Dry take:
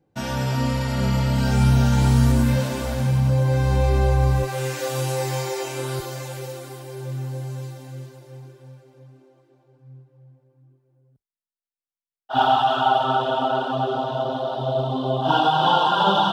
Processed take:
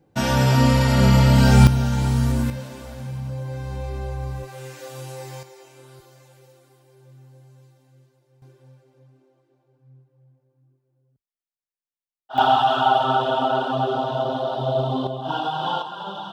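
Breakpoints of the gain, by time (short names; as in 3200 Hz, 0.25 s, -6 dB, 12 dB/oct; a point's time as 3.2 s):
+6.5 dB
from 1.67 s -3.5 dB
from 2.5 s -11 dB
from 5.43 s -19 dB
from 8.42 s -6.5 dB
from 12.38 s +1 dB
from 15.07 s -7 dB
from 15.82 s -14.5 dB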